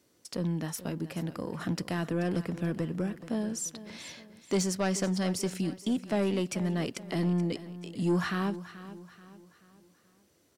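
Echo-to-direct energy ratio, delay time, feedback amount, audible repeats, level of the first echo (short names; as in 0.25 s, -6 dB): -14.0 dB, 0.432 s, 43%, 3, -15.0 dB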